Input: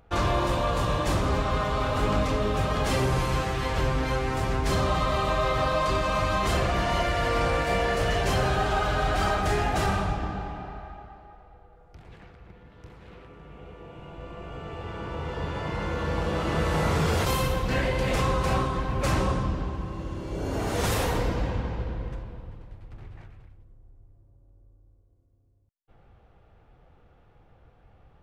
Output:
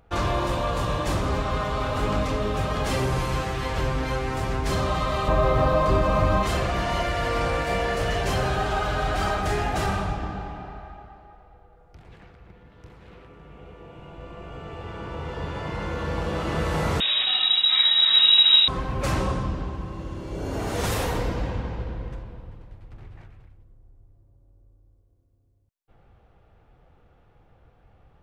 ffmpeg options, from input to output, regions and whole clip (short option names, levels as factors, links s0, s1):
-filter_complex "[0:a]asettb=1/sr,asplit=3[s0][s1][s2];[s0]atrim=end=5.284[s3];[s1]atrim=start=5.28:end=6.43,asetpts=PTS-STARTPTS,afade=t=in:d=0.004:c=qsin,afade=t=out:st=1.146:d=0.004:c=qsin,aeval=exprs='val(0)+0.5*0.01*sgn(val(0))':c=same,tiltshelf=f=1400:g=6.5[s4];[s2]atrim=start=6.426[s5];[s3][s4]acrossfade=d=0.004:c1=hsin:c2=qsin[s6];[s6][s5]acrossfade=d=0.004:c1=qsin:c2=hsin,asettb=1/sr,asplit=3[s7][s8][s9];[s7]atrim=end=17.004[s10];[s8]atrim=start=17:end=18.68,asetpts=PTS-STARTPTS,afade=t=in:d=0.004:c=qsin,afade=t=out:st=1.676:d=0.004:c=qsin,asubboost=boost=8.5:cutoff=170,acrusher=bits=4:mode=log:mix=0:aa=0.000001,lowpass=f=3300:t=q:w=0.5098,lowpass=f=3300:t=q:w=0.6013,lowpass=f=3300:t=q:w=0.9,lowpass=f=3300:t=q:w=2.563,afreqshift=-3900[s11];[s9]atrim=start=18.676[s12];[s10][s11]acrossfade=d=0.004:c1=hsin:c2=qsin[s13];[s13][s12]acrossfade=d=0.004:c1=qsin:c2=hsin"